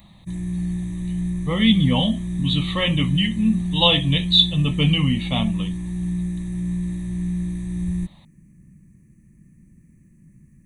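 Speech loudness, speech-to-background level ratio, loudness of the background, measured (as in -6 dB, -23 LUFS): -19.5 LUFS, 7.5 dB, -27.0 LUFS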